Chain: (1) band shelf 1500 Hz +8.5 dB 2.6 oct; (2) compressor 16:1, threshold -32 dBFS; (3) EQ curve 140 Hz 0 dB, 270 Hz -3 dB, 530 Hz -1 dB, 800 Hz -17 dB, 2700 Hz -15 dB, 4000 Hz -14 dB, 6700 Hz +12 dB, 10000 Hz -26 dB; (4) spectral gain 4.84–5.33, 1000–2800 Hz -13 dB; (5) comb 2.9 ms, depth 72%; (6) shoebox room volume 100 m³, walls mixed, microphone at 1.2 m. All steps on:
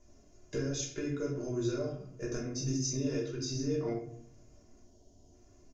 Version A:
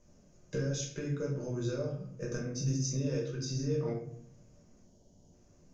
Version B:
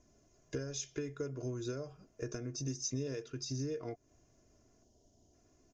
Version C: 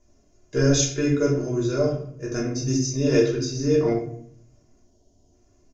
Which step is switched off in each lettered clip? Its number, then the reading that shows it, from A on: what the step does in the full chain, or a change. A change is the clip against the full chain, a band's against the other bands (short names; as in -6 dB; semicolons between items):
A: 5, 125 Hz band +5.5 dB; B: 6, echo-to-direct 3.0 dB to none; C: 2, mean gain reduction 10.5 dB